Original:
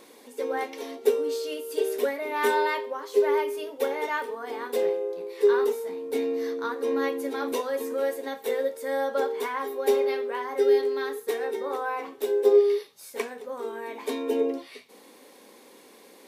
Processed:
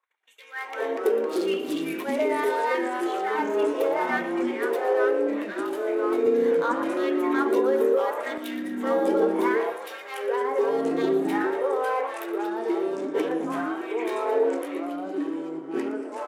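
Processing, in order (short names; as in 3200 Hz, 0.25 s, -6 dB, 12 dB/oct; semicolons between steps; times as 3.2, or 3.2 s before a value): Wiener smoothing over 9 samples; gate -48 dBFS, range -36 dB; compressor, threshold -29 dBFS, peak gain reduction 14 dB; limiter -27 dBFS, peak gain reduction 8 dB; LFO high-pass sine 0.74 Hz 360–3000 Hz; echoes that change speed 0.102 s, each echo -3 st, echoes 3; frequency-shifting echo 0.117 s, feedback 61%, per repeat +32 Hz, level -13.5 dB; 6.26–8.38 three-band squash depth 70%; gain +5.5 dB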